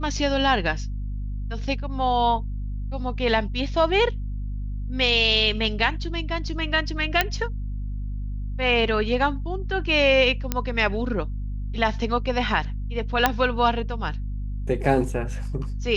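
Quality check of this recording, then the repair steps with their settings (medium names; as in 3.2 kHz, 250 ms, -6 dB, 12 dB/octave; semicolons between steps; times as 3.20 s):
hum 50 Hz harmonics 5 -29 dBFS
7.21 s: pop -4 dBFS
10.52 s: pop -8 dBFS
13.26 s: pop -3 dBFS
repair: de-click; de-hum 50 Hz, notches 5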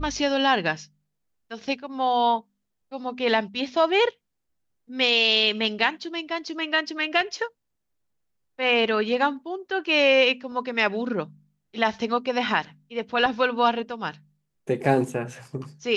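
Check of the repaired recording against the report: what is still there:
nothing left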